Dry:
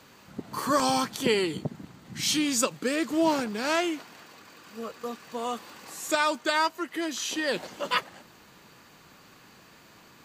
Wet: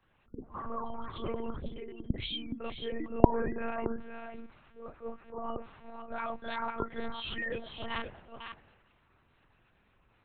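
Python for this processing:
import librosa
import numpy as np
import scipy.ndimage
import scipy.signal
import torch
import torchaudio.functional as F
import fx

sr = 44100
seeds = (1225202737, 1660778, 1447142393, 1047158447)

p1 = fx.frame_reverse(x, sr, frame_ms=75.0)
p2 = fx.over_compress(p1, sr, threshold_db=-32.0, ratio=-0.5)
p3 = p1 + (p2 * librosa.db_to_amplitude(2.5))
p4 = fx.spec_gate(p3, sr, threshold_db=-15, keep='strong')
p5 = p4 + fx.echo_multitap(p4, sr, ms=(449, 509), db=(-17.5, -5.5), dry=0)
p6 = fx.lpc_monotone(p5, sr, seeds[0], pitch_hz=230.0, order=8)
p7 = fx.band_widen(p6, sr, depth_pct=40)
y = p7 * librosa.db_to_amplitude(-10.5)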